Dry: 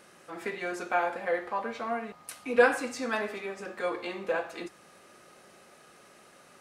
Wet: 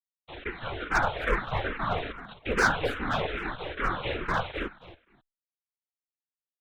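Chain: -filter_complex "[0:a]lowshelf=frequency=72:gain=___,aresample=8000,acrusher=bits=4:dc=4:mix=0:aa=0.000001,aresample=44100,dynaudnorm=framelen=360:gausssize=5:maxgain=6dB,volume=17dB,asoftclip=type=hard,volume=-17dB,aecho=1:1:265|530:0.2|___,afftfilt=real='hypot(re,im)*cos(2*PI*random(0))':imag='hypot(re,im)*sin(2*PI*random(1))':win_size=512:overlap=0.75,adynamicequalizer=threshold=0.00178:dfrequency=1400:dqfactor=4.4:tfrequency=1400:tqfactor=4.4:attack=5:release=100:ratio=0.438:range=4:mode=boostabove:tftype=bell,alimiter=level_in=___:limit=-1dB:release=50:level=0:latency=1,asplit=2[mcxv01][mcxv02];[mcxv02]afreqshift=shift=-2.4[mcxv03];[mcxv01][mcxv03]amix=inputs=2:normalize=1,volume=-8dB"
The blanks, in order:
11.5, 0.0439, 17dB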